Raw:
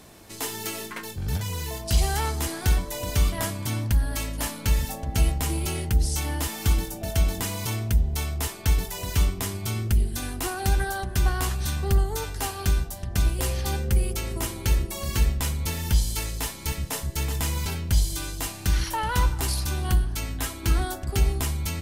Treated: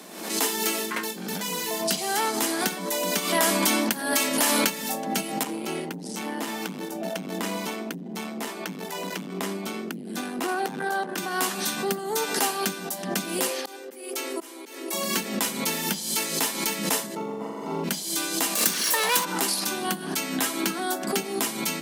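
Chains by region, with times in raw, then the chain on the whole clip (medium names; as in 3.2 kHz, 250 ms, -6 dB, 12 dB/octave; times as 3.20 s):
3.18–4.70 s: peaking EQ 140 Hz -11.5 dB 1.1 oct + level flattener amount 70%
5.43–11.18 s: treble shelf 4 kHz -11.5 dB + compression, threshold -25 dBFS + transformer saturation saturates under 200 Hz
13.47–14.93 s: Chebyshev high-pass 250 Hz, order 8 + slow attack 426 ms
17.15–17.84 s: Savitzky-Golay filter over 65 samples + flutter echo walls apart 7.4 m, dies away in 1.4 s
18.55–19.25 s: comb filter that takes the minimum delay 1.8 ms + treble shelf 4 kHz +11 dB + three bands compressed up and down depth 40%
whole clip: compression, threshold -23 dBFS; steep high-pass 180 Hz 72 dB/octave; swell ahead of each attack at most 66 dB/s; trim +6 dB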